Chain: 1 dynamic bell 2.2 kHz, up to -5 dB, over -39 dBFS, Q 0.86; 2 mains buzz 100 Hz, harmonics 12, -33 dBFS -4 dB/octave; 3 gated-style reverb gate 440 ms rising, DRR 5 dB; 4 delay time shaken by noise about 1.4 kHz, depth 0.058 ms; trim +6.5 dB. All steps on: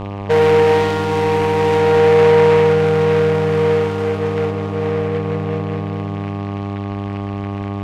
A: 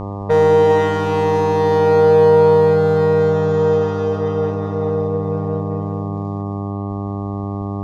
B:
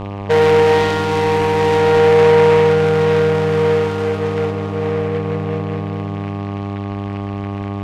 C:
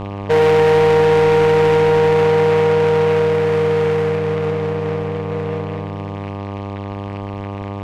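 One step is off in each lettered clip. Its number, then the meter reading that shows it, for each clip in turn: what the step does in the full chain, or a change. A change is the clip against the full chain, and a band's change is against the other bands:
4, 2 kHz band -5.5 dB; 1, 4 kHz band +2.0 dB; 3, momentary loudness spread change +1 LU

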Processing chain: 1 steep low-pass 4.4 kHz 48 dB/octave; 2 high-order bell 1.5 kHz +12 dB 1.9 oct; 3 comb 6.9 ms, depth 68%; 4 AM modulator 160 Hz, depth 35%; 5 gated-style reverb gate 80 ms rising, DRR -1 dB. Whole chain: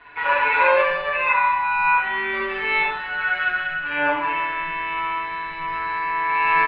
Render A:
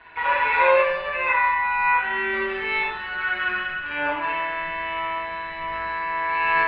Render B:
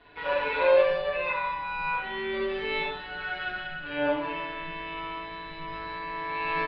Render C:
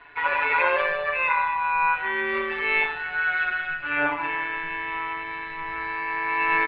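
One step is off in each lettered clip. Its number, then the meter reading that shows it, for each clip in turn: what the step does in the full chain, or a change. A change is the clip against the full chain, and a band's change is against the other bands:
3, 500 Hz band +1.5 dB; 2, momentary loudness spread change +5 LU; 5, 250 Hz band +4.0 dB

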